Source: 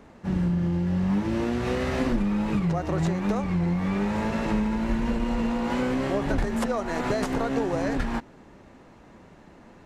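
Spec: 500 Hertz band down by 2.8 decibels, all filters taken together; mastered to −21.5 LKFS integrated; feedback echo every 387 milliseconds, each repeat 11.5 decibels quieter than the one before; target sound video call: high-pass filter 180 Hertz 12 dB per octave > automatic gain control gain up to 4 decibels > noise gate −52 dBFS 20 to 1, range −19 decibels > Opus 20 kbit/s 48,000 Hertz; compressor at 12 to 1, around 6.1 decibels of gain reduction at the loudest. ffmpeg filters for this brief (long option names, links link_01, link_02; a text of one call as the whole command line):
ffmpeg -i in.wav -af "equalizer=frequency=500:width_type=o:gain=-3.5,acompressor=threshold=-26dB:ratio=12,highpass=180,aecho=1:1:387|774|1161:0.266|0.0718|0.0194,dynaudnorm=maxgain=4dB,agate=range=-19dB:threshold=-52dB:ratio=20,volume=11dB" -ar 48000 -c:a libopus -b:a 20k out.opus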